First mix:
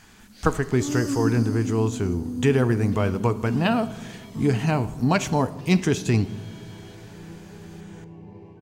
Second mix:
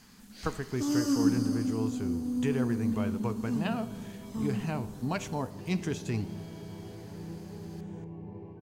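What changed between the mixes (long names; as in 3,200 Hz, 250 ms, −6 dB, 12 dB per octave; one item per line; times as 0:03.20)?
speech −11.5 dB
second sound: add low-pass filter 1,200 Hz 6 dB per octave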